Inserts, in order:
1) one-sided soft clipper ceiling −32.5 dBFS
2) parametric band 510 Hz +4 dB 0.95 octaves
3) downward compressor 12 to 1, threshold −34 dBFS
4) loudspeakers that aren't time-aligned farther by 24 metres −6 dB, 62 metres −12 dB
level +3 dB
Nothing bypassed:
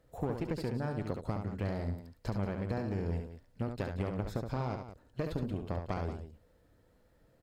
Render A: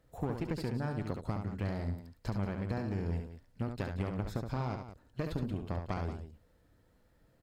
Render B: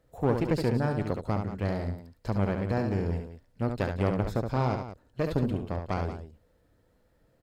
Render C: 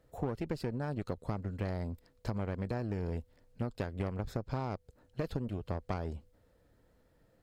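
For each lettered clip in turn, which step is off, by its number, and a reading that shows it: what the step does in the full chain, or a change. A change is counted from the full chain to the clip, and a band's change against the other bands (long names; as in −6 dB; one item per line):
2, 500 Hz band −3.0 dB
3, average gain reduction 5.5 dB
4, echo-to-direct ratio −5.0 dB to none audible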